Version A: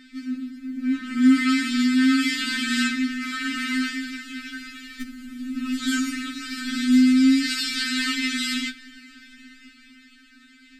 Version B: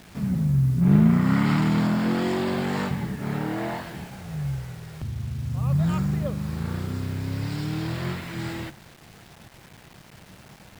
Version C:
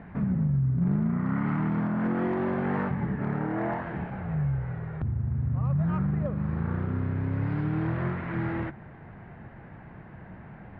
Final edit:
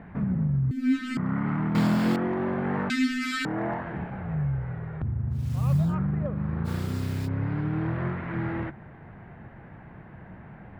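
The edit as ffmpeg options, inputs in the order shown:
-filter_complex "[0:a]asplit=2[a][b];[1:a]asplit=3[c][d][e];[2:a]asplit=6[f][g][h][i][j][k];[f]atrim=end=0.712[l];[a]atrim=start=0.708:end=1.172[m];[g]atrim=start=1.168:end=1.752[n];[c]atrim=start=1.748:end=2.162[o];[h]atrim=start=2.158:end=2.902[p];[b]atrim=start=2.898:end=3.452[q];[i]atrim=start=3.448:end=5.53[r];[d]atrim=start=5.29:end=5.96[s];[j]atrim=start=5.72:end=6.68[t];[e]atrim=start=6.64:end=7.29[u];[k]atrim=start=7.25[v];[l][m]acrossfade=d=0.004:c1=hsin:c2=hsin[w];[w][n]acrossfade=d=0.004:c1=hsin:c2=hsin[x];[x][o]acrossfade=d=0.004:c1=hsin:c2=hsin[y];[y][p]acrossfade=d=0.004:c1=hsin:c2=hsin[z];[z][q]acrossfade=d=0.004:c1=hsin:c2=hsin[aa];[aa][r]acrossfade=d=0.004:c1=hsin:c2=hsin[ab];[ab][s]acrossfade=d=0.24:c1=tri:c2=tri[ac];[ac][t]acrossfade=d=0.24:c1=tri:c2=tri[ad];[ad][u]acrossfade=d=0.04:c1=tri:c2=tri[ae];[ae][v]acrossfade=d=0.04:c1=tri:c2=tri"

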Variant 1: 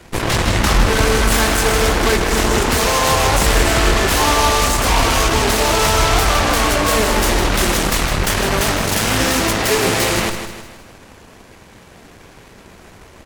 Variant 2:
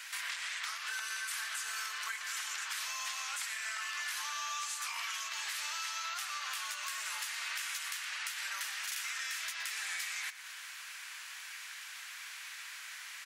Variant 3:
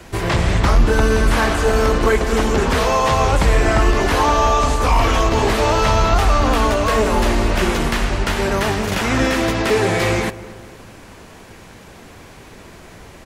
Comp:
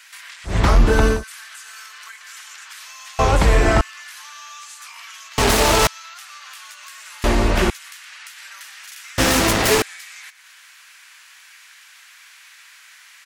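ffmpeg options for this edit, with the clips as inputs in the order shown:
-filter_complex "[2:a]asplit=3[a][b][c];[0:a]asplit=2[d][e];[1:a]asplit=6[f][g][h][i][j][k];[f]atrim=end=0.6[l];[a]atrim=start=0.44:end=1.24[m];[g]atrim=start=1.08:end=3.192[n];[b]atrim=start=3.188:end=3.812[o];[h]atrim=start=3.808:end=5.382[p];[d]atrim=start=5.378:end=5.872[q];[i]atrim=start=5.868:end=7.242[r];[c]atrim=start=7.238:end=7.702[s];[j]atrim=start=7.698:end=9.182[t];[e]atrim=start=9.178:end=9.822[u];[k]atrim=start=9.818[v];[l][m]acrossfade=d=0.16:c1=tri:c2=tri[w];[w][n]acrossfade=d=0.16:c1=tri:c2=tri[x];[x][o]acrossfade=d=0.004:c1=hsin:c2=hsin[y];[y][p]acrossfade=d=0.004:c1=hsin:c2=hsin[z];[z][q]acrossfade=d=0.004:c1=hsin:c2=hsin[aa];[aa][r]acrossfade=d=0.004:c1=hsin:c2=hsin[ab];[ab][s]acrossfade=d=0.004:c1=hsin:c2=hsin[ac];[ac][t]acrossfade=d=0.004:c1=hsin:c2=hsin[ad];[ad][u]acrossfade=d=0.004:c1=hsin:c2=hsin[ae];[ae][v]acrossfade=d=0.004:c1=hsin:c2=hsin"

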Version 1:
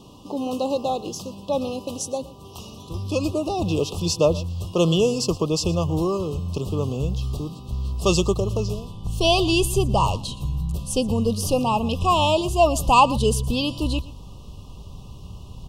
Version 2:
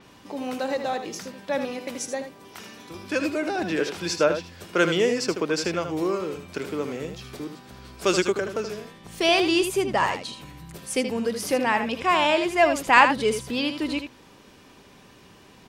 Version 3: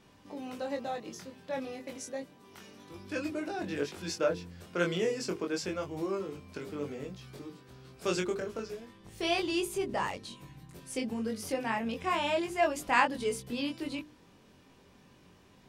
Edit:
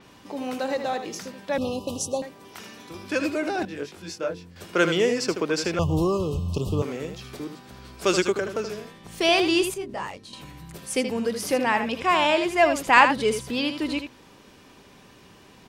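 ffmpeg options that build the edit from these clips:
-filter_complex "[0:a]asplit=2[a][b];[2:a]asplit=2[c][d];[1:a]asplit=5[e][f][g][h][i];[e]atrim=end=1.582[j];[a]atrim=start=1.578:end=2.222[k];[f]atrim=start=2.218:end=3.652[l];[c]atrim=start=3.648:end=4.562[m];[g]atrim=start=4.558:end=5.792[n];[b]atrim=start=5.788:end=6.822[o];[h]atrim=start=6.818:end=9.742[p];[d]atrim=start=9.738:end=10.332[q];[i]atrim=start=10.328[r];[j][k]acrossfade=d=0.004:c1=hsin:c2=hsin[s];[s][l]acrossfade=d=0.004:c1=hsin:c2=hsin[t];[t][m]acrossfade=d=0.004:c1=hsin:c2=hsin[u];[u][n]acrossfade=d=0.004:c1=hsin:c2=hsin[v];[v][o]acrossfade=d=0.004:c1=hsin:c2=hsin[w];[w][p]acrossfade=d=0.004:c1=hsin:c2=hsin[x];[x][q]acrossfade=d=0.004:c1=hsin:c2=hsin[y];[y][r]acrossfade=d=0.004:c1=hsin:c2=hsin"

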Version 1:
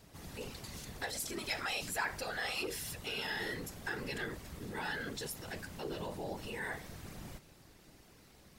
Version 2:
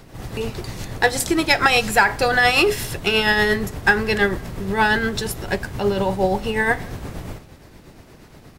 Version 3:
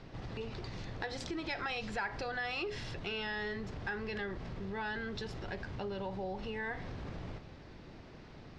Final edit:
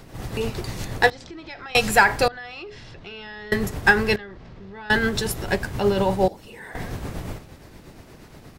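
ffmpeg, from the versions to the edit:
-filter_complex "[2:a]asplit=3[a][b][c];[1:a]asplit=5[d][e][f][g][h];[d]atrim=end=1.102[i];[a]atrim=start=1.098:end=1.752[j];[e]atrim=start=1.748:end=2.282[k];[b]atrim=start=2.278:end=3.522[l];[f]atrim=start=3.518:end=4.162[m];[c]atrim=start=4.158:end=4.902[n];[g]atrim=start=4.898:end=6.282[o];[0:a]atrim=start=6.278:end=6.752[p];[h]atrim=start=6.748[q];[i][j]acrossfade=d=0.004:c1=hsin:c2=hsin[r];[r][k]acrossfade=d=0.004:c1=hsin:c2=hsin[s];[s][l]acrossfade=d=0.004:c1=hsin:c2=hsin[t];[t][m]acrossfade=d=0.004:c1=hsin:c2=hsin[u];[u][n]acrossfade=d=0.004:c1=hsin:c2=hsin[v];[v][o]acrossfade=d=0.004:c1=hsin:c2=hsin[w];[w][p]acrossfade=d=0.004:c1=hsin:c2=hsin[x];[x][q]acrossfade=d=0.004:c1=hsin:c2=hsin"

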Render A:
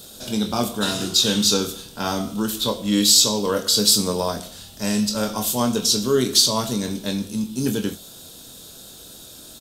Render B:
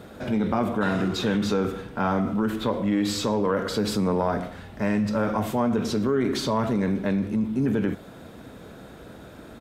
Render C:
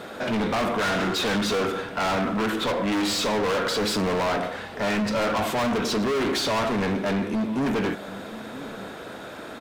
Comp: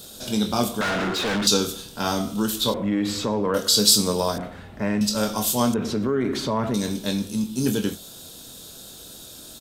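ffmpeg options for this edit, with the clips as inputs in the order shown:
-filter_complex "[1:a]asplit=3[a][b][c];[0:a]asplit=5[d][e][f][g][h];[d]atrim=end=0.812[i];[2:a]atrim=start=0.808:end=1.472[j];[e]atrim=start=1.468:end=2.742[k];[a]atrim=start=2.738:end=3.542[l];[f]atrim=start=3.538:end=4.382[m];[b]atrim=start=4.378:end=5.012[n];[g]atrim=start=5.008:end=5.742[o];[c]atrim=start=5.738:end=6.742[p];[h]atrim=start=6.738[q];[i][j]acrossfade=d=0.004:c1=hsin:c2=hsin[r];[r][k]acrossfade=d=0.004:c1=hsin:c2=hsin[s];[s][l]acrossfade=d=0.004:c1=hsin:c2=hsin[t];[t][m]acrossfade=d=0.004:c1=hsin:c2=hsin[u];[u][n]acrossfade=d=0.004:c1=hsin:c2=hsin[v];[v][o]acrossfade=d=0.004:c1=hsin:c2=hsin[w];[w][p]acrossfade=d=0.004:c1=hsin:c2=hsin[x];[x][q]acrossfade=d=0.004:c1=hsin:c2=hsin"

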